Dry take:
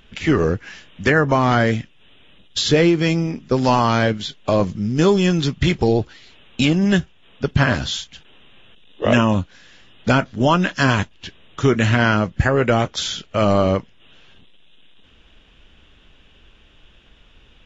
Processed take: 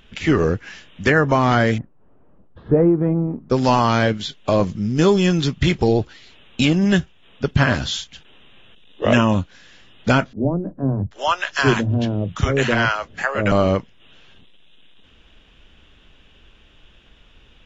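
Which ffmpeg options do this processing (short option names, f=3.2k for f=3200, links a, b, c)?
-filter_complex "[0:a]asettb=1/sr,asplit=3[a][b][c];[a]atrim=end=1.784[d];[b]atrim=start=1.78:end=3.5,asetpts=PTS-STARTPTS,afade=t=in:d=0.004:c=qsin,afade=t=out:st=1.716:d=0.004:c=qsin,lowpass=f=1.1k:w=0.5412,lowpass=f=1.1k:w=1.3066[e];[c]atrim=start=3.496[f];[d][e]acrossfade=d=0.004:c1=hsin:c2=qsin[g];[g][f]acrossfade=d=0.004:c1=qsin:c2=hsin,asettb=1/sr,asplit=3[h][i][j];[h]atrim=end=10.334[k];[i]atrim=start=10.33:end=13.52,asetpts=PTS-STARTPTS,afade=t=in:d=0.004:c=qsin,afade=t=out:st=3.186:d=0.004:c=qsin,acrossover=split=170|590[l][m][n];[l]adelay=30[o];[n]adelay=780[p];[o][m][p]amix=inputs=3:normalize=0,atrim=end_sample=140679[q];[j]atrim=start=13.516[r];[k][q]acrossfade=d=0.004:c1=hsin:c2=qsin[s];[s][r]acrossfade=d=0.004:c1=qsin:c2=hsin"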